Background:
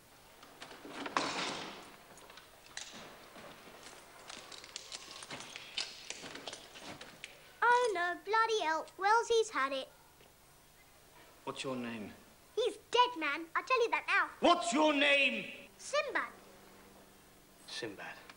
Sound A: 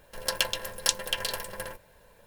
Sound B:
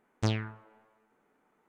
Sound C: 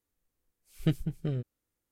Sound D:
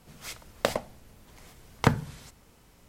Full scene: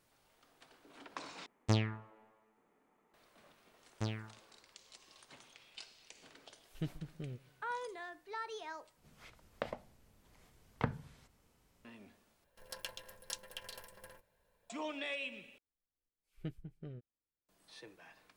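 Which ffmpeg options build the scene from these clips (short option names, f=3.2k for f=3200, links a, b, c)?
-filter_complex "[2:a]asplit=2[a][b];[3:a]asplit=2[c][d];[0:a]volume=-12.5dB[e];[a]bandreject=f=1.5k:w=8.7[f];[c]asplit=2[g][h];[h]adelay=132,lowpass=f=2k:p=1,volume=-22dB,asplit=2[i][j];[j]adelay=132,lowpass=f=2k:p=1,volume=0.51,asplit=2[k][l];[l]adelay=132,lowpass=f=2k:p=1,volume=0.51,asplit=2[m][n];[n]adelay=132,lowpass=f=2k:p=1,volume=0.51[o];[g][i][k][m][o]amix=inputs=5:normalize=0[p];[4:a]acrossover=split=3500[q][r];[r]acompressor=threshold=-56dB:ratio=4:attack=1:release=60[s];[q][s]amix=inputs=2:normalize=0[t];[d]bass=f=250:g=-2,treble=f=4k:g=-12[u];[e]asplit=5[v][w][x][y][z];[v]atrim=end=1.464[aa];[f]atrim=end=1.68,asetpts=PTS-STARTPTS,volume=-2dB[ab];[w]atrim=start=3.136:end=8.974[ac];[t]atrim=end=2.88,asetpts=PTS-STARTPTS,volume=-13dB[ad];[x]atrim=start=11.846:end=12.444[ae];[1:a]atrim=end=2.26,asetpts=PTS-STARTPTS,volume=-18dB[af];[y]atrim=start=14.696:end=15.584[ag];[u]atrim=end=1.91,asetpts=PTS-STARTPTS,volume=-14.5dB[ah];[z]atrim=start=17.486[ai];[b]atrim=end=1.68,asetpts=PTS-STARTPTS,volume=-9.5dB,afade=t=in:d=0.004:c=hsin,afade=t=out:st=1.676:d=0.004:c=hsin,adelay=3780[aj];[p]atrim=end=1.91,asetpts=PTS-STARTPTS,volume=-12.5dB,afade=t=in:d=0.004:c=hsin,afade=t=out:st=1.906:d=0.004:c=hsin,adelay=5950[ak];[aa][ab]acrossfade=d=0.004:c1=hsin:c2=hsin[al];[al][ac]acrossfade=d=0.004:c1=hsin:c2=hsin[am];[am][ad]acrossfade=d=0.004:c1=hsin:c2=hsin[an];[an][ae]acrossfade=d=0.004:c1=hsin:c2=hsin[ao];[ao][af]acrossfade=d=0.004:c1=hsin:c2=hsin[ap];[ap][ag]acrossfade=d=0.004:c1=hsin:c2=hsin[aq];[aq][ah]acrossfade=d=0.004:c1=hsin:c2=hsin[ar];[ar][ai]acrossfade=d=0.004:c1=hsin:c2=hsin[as];[as][aj][ak]amix=inputs=3:normalize=0"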